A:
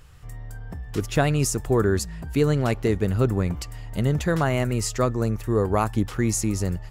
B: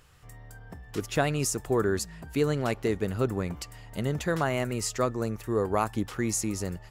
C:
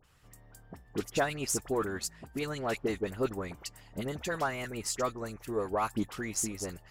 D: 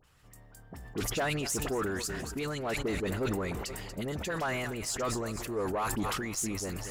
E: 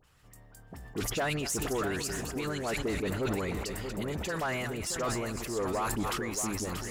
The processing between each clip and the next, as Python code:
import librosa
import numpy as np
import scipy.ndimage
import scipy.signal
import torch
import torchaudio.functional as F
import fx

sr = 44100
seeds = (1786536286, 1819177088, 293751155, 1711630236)

y1 = fx.low_shelf(x, sr, hz=140.0, db=-10.5)
y1 = F.gain(torch.from_numpy(y1), -3.0).numpy()
y2 = fx.hpss(y1, sr, part='harmonic', gain_db=-11)
y2 = fx.cheby_harmonics(y2, sr, harmonics=(8,), levels_db=(-33,), full_scale_db=-13.5)
y2 = fx.dispersion(y2, sr, late='highs', ms=41.0, hz=1600.0)
y2 = F.gain(torch.from_numpy(y2), -1.5).numpy()
y3 = 10.0 ** (-25.0 / 20.0) * np.tanh(y2 / 10.0 ** (-25.0 / 20.0))
y3 = fx.echo_feedback(y3, sr, ms=236, feedback_pct=49, wet_db=-18)
y3 = fx.sustainer(y3, sr, db_per_s=21.0)
y4 = y3 + 10.0 ** (-8.5 / 20.0) * np.pad(y3, (int(632 * sr / 1000.0), 0))[:len(y3)]
y4 = fx.buffer_glitch(y4, sr, at_s=(4.87,), block=128, repeats=10)